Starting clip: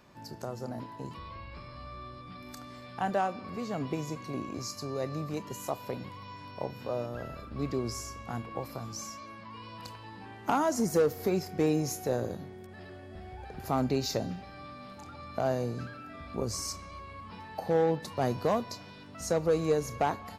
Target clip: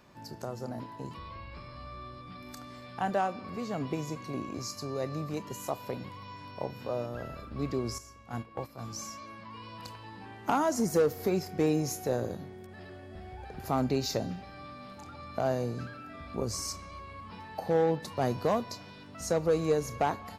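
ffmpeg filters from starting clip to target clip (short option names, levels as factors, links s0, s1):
-filter_complex "[0:a]asettb=1/sr,asplit=3[s0][s1][s2];[s0]atrim=end=7.984[s3];[s1]atrim=start=7.98:end=8.79,asetpts=PTS-STARTPTS,afade=t=in:d=0.004:c=qsin,afade=t=out:st=0.806:d=0.004:c=qsin,agate=range=0.316:threshold=0.0158:ratio=16:detection=peak[s4];[s2]atrim=start=8.786[s5];[s3][s4]acrossfade=d=0.004:c1=hsin:c2=qsin[s6];[s6][s5]acrossfade=d=0.004:c1=qsin:c2=hsin"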